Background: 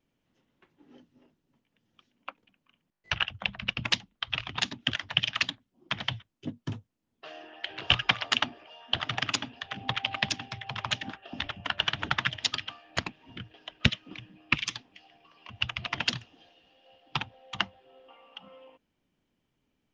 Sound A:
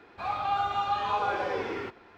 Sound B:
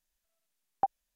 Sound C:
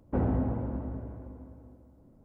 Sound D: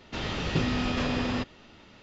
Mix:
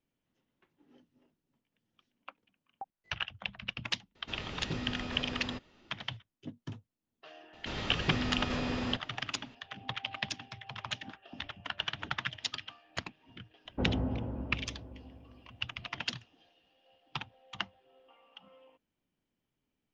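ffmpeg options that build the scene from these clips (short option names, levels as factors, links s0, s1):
-filter_complex "[4:a]asplit=2[s0][s1];[0:a]volume=0.422[s2];[2:a]lowpass=1500,atrim=end=1.15,asetpts=PTS-STARTPTS,volume=0.178,afade=t=in:d=0.004:c=hsin,afade=t=out:st=1.146:d=0.004:c=hsin,adelay=1980[s3];[s0]atrim=end=2.02,asetpts=PTS-STARTPTS,volume=0.299,afade=t=in:d=0.004:c=hsin,afade=t=out:st=2.016:d=0.004:c=hsin,adelay=4150[s4];[s1]atrim=end=2.02,asetpts=PTS-STARTPTS,volume=0.531,afade=t=in:d=0.004:c=hsin,afade=t=out:st=2.016:d=0.004:c=hsin,adelay=7530[s5];[3:a]atrim=end=2.24,asetpts=PTS-STARTPTS,volume=0.596,afade=t=in:d=0.004:c=hsin,afade=t=out:st=2.236:d=0.004:c=hsin,adelay=13650[s6];[s2][s3][s4][s5][s6]amix=inputs=5:normalize=0"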